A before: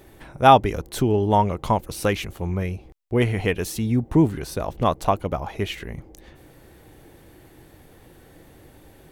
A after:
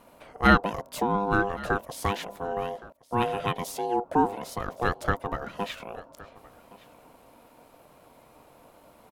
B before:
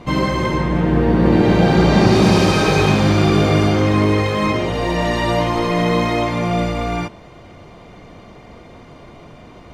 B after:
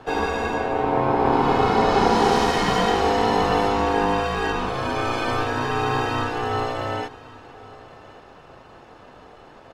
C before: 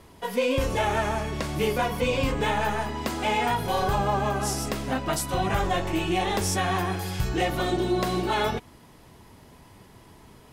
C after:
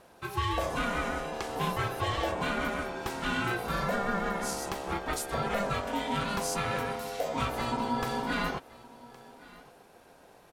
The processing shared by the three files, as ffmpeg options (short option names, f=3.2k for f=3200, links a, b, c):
-af "aecho=1:1:1117:0.0891,aeval=exprs='val(0)*sin(2*PI*600*n/s)':c=same,volume=-3dB"